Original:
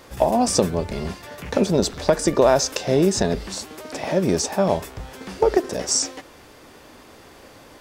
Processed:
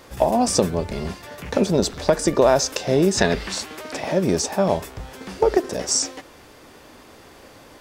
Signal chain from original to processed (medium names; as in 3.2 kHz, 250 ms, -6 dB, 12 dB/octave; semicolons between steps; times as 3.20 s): 3.17–3.99 s: peaking EQ 2.1 kHz +11.5 dB -> +4 dB 2.3 oct